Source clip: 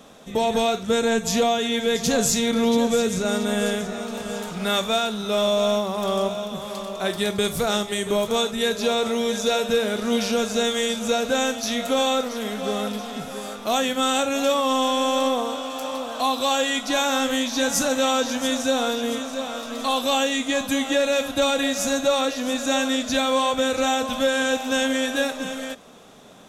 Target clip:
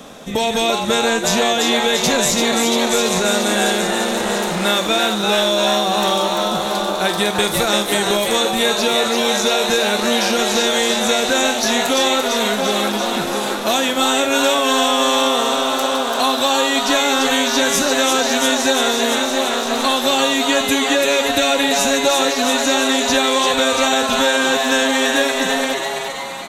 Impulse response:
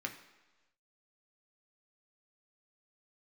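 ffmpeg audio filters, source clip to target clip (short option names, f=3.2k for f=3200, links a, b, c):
-filter_complex "[0:a]acrossover=split=620|1300[a][b][c];[a]acompressor=threshold=-31dB:ratio=4[d];[b]acompressor=threshold=-37dB:ratio=4[e];[c]acompressor=threshold=-28dB:ratio=4[f];[d][e][f]amix=inputs=3:normalize=0,asplit=9[g][h][i][j][k][l][m][n][o];[h]adelay=340,afreqshift=140,volume=-4.5dB[p];[i]adelay=680,afreqshift=280,volume=-9.2dB[q];[j]adelay=1020,afreqshift=420,volume=-14dB[r];[k]adelay=1360,afreqshift=560,volume=-18.7dB[s];[l]adelay=1700,afreqshift=700,volume=-23.4dB[t];[m]adelay=2040,afreqshift=840,volume=-28.2dB[u];[n]adelay=2380,afreqshift=980,volume=-32.9dB[v];[o]adelay=2720,afreqshift=1120,volume=-37.6dB[w];[g][p][q][r][s][t][u][v][w]amix=inputs=9:normalize=0,asplit=2[x][y];[1:a]atrim=start_sample=2205[z];[y][z]afir=irnorm=-1:irlink=0,volume=-16dB[aa];[x][aa]amix=inputs=2:normalize=0,volume=9dB"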